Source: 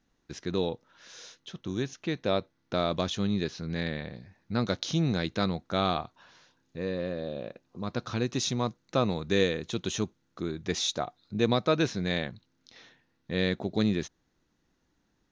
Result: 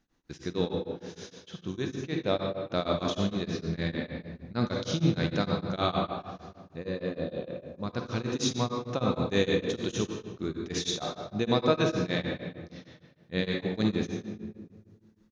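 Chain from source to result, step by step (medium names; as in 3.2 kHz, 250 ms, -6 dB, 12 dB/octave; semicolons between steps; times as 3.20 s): reverberation RT60 1.6 s, pre-delay 43 ms, DRR 1 dB; tremolo of two beating tones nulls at 6.5 Hz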